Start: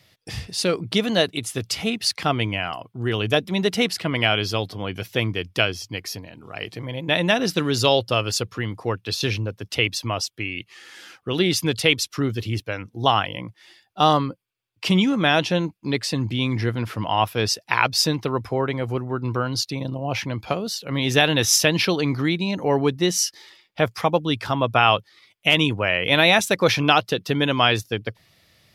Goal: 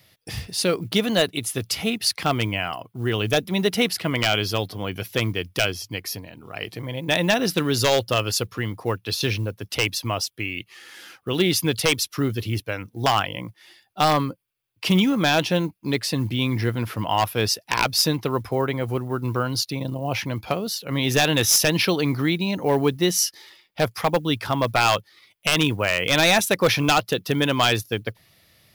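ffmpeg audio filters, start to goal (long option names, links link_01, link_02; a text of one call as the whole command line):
ffmpeg -i in.wav -af "acrusher=bits=9:mode=log:mix=0:aa=0.000001,aexciter=amount=1.5:drive=8.3:freq=10000,aeval=exprs='0.335*(abs(mod(val(0)/0.335+3,4)-2)-1)':channel_layout=same" out.wav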